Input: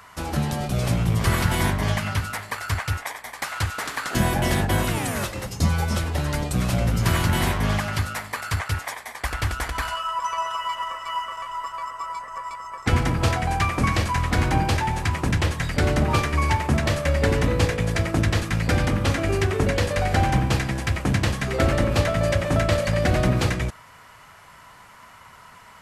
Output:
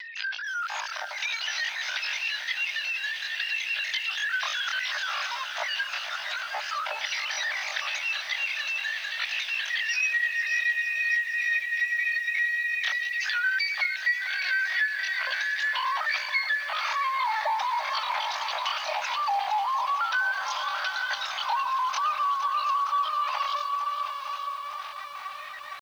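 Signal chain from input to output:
three sine waves on the formant tracks
low-shelf EQ 410 Hz +8 dB
on a send: feedback delay with all-pass diffusion 765 ms, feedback 43%, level −9.5 dB
on the sum: upward compression, threshold −34 dBFS
linear-prediction vocoder at 8 kHz pitch kept
Chebyshev high-pass with heavy ripple 300 Hz, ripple 3 dB
downward compressor 5 to 1, threshold −25 dBFS, peak gain reduction 16.5 dB
pitch shifter +11.5 semitones
feedback echo at a low word length 462 ms, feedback 80%, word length 8 bits, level −12.5 dB

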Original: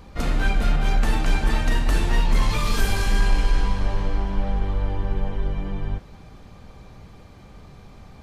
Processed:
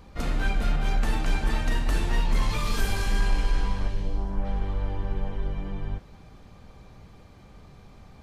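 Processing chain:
0:03.87–0:04.44: parametric band 730 Hz → 4,300 Hz −10.5 dB 1.5 octaves
level −4.5 dB

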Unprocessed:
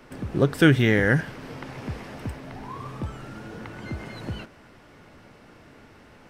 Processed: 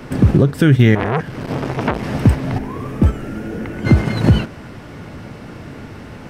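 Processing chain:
0:02.58–0:03.85: octave-band graphic EQ 125/1,000/4,000/8,000 Hz −12/−9/−9/−4 dB
downward compressor 10 to 1, threshold −31 dBFS, peak gain reduction 20 dB
noise gate −37 dBFS, range −7 dB
parametric band 120 Hz +8.5 dB 2.7 octaves
boost into a limiter +20.5 dB
0:00.95–0:02.03: saturating transformer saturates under 1,100 Hz
level −1 dB

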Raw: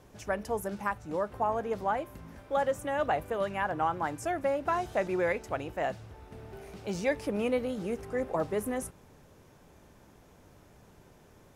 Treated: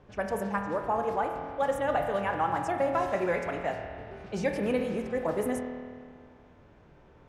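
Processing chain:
low-pass that shuts in the quiet parts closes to 2,700 Hz, open at −27.5 dBFS
spring reverb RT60 3.1 s, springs 40 ms, chirp 40 ms, DRR 3 dB
phase-vocoder stretch with locked phases 0.63×
level +1 dB

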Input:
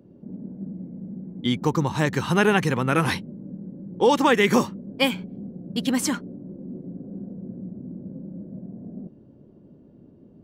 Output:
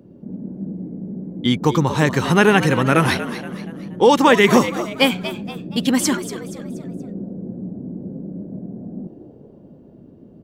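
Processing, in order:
echo with shifted repeats 237 ms, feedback 41%, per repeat +110 Hz, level −12.5 dB
level +5.5 dB

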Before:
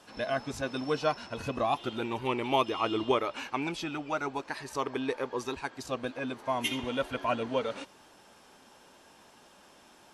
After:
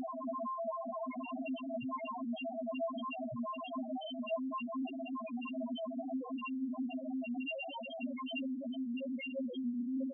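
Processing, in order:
extreme stretch with random phases 42×, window 1.00 s, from 0:06.54
spectral peaks only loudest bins 1
level +4.5 dB

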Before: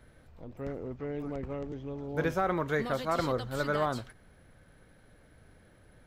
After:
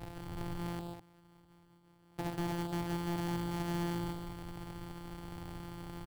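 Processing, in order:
samples sorted by size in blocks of 256 samples
0:00.79–0:02.74: noise gate −29 dBFS, range −40 dB
thirty-one-band graphic EQ 125 Hz +9 dB, 200 Hz −4 dB, 315 Hz +5 dB, 800 Hz +10 dB, 6,300 Hz −6 dB
in parallel at +0.5 dB: compressor whose output falls as the input rises −46 dBFS, ratio −0.5
on the sum: soft clipping −28 dBFS, distortion −9 dB
on a send: loudspeakers that aren't time-aligned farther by 50 metres −8 dB, 70 metres −9 dB
on the sum: level −4 dB

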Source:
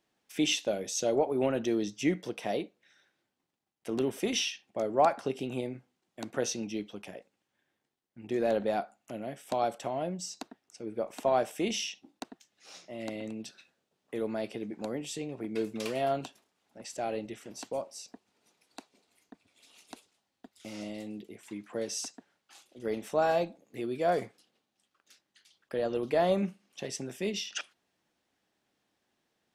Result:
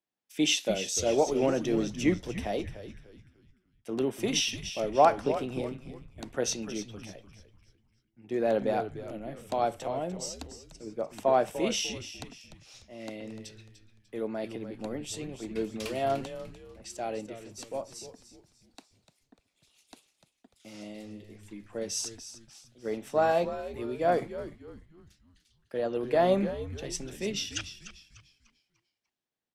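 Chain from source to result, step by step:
echo with shifted repeats 297 ms, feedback 48%, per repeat −110 Hz, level −9.5 dB
multiband upward and downward expander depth 40%

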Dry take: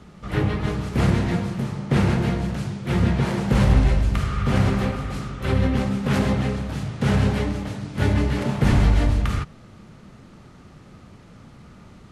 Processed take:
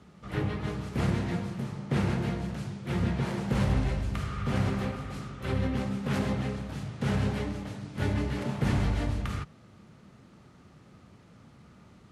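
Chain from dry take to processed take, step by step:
high-pass filter 63 Hz
level −8 dB

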